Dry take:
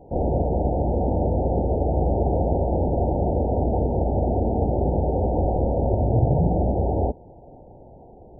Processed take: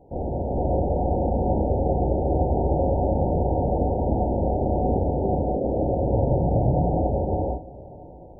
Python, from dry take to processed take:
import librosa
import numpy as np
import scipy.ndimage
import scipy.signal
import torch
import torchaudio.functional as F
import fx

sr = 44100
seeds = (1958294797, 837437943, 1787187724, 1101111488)

p1 = fx.ellip_bandpass(x, sr, low_hz=130.0, high_hz=680.0, order=3, stop_db=40, at=(5.09, 5.65))
p2 = p1 + fx.echo_feedback(p1, sr, ms=622, feedback_pct=45, wet_db=-21, dry=0)
p3 = fx.rev_gated(p2, sr, seeds[0], gate_ms=500, shape='rising', drr_db=-4.0)
y = p3 * 10.0 ** (-5.5 / 20.0)